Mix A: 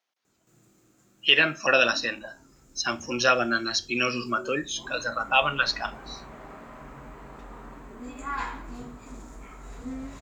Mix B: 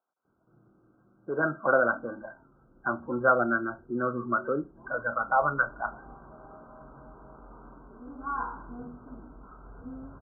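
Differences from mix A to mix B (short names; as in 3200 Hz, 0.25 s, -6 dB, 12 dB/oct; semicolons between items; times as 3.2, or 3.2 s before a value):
first sound -6.0 dB; master: add brick-wall FIR low-pass 1600 Hz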